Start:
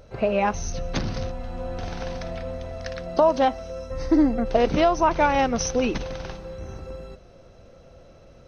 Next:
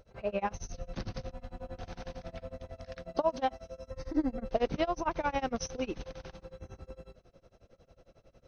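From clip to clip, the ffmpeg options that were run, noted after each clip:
-af "tremolo=f=11:d=0.96,volume=-7.5dB"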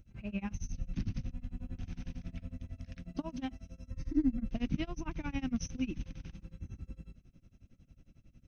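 -af "firequalizer=gain_entry='entry(270,0);entry(450,-24);entry(2500,-6);entry(4300,-15);entry(6200,-7)':delay=0.05:min_phase=1,volume=4dB"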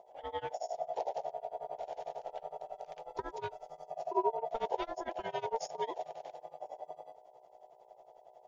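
-af "aeval=exprs='val(0)+0.00112*(sin(2*PI*60*n/s)+sin(2*PI*2*60*n/s)/2+sin(2*PI*3*60*n/s)/3+sin(2*PI*4*60*n/s)/4+sin(2*PI*5*60*n/s)/5)':c=same,aeval=exprs='val(0)*sin(2*PI*680*n/s)':c=same,volume=1dB"

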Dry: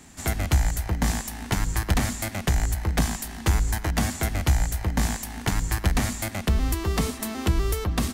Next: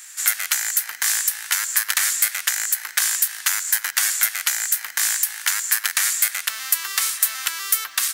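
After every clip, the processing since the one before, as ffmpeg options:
-af "crystalizer=i=7:c=0,acrusher=bits=8:mode=log:mix=0:aa=0.000001,highpass=f=1.5k:t=q:w=2.5,volume=-4.5dB"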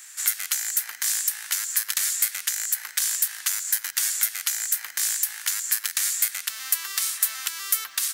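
-filter_complex "[0:a]acrossover=split=300|3000[a][b][c];[b]acompressor=threshold=-32dB:ratio=6[d];[a][d][c]amix=inputs=3:normalize=0,volume=-3.5dB"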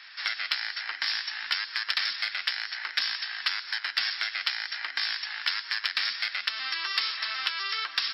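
-filter_complex "[0:a]afftfilt=real='re*between(b*sr/4096,220,5500)':imag='im*between(b*sr/4096,220,5500)':win_size=4096:overlap=0.75,asplit=2[a][b];[b]asoftclip=type=hard:threshold=-25dB,volume=-11dB[c];[a][c]amix=inputs=2:normalize=0,flanger=delay=2.5:depth=8:regen=-52:speed=0.59:shape=sinusoidal,volume=6.5dB"

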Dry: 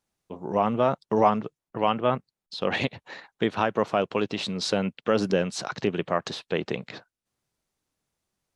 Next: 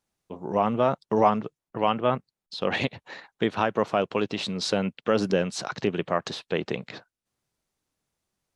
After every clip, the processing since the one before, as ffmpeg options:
-af anull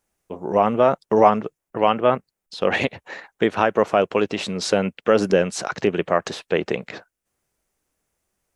-af "equalizer=f=125:t=o:w=1:g=-8,equalizer=f=250:t=o:w=1:g=-4,equalizer=f=1k:t=o:w=1:g=-4,equalizer=f=4k:t=o:w=1:g=-9,volume=9dB"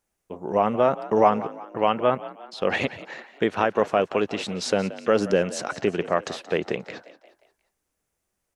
-filter_complex "[0:a]asplit=5[a][b][c][d][e];[b]adelay=177,afreqshift=51,volume=-16.5dB[f];[c]adelay=354,afreqshift=102,volume=-22.9dB[g];[d]adelay=531,afreqshift=153,volume=-29.3dB[h];[e]adelay=708,afreqshift=204,volume=-35.6dB[i];[a][f][g][h][i]amix=inputs=5:normalize=0,volume=-3.5dB"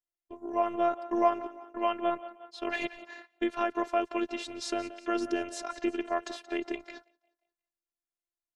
-af "agate=range=-15dB:threshold=-42dB:ratio=16:detection=peak,afftfilt=real='hypot(re,im)*cos(PI*b)':imag='0':win_size=512:overlap=0.75,volume=-4dB"

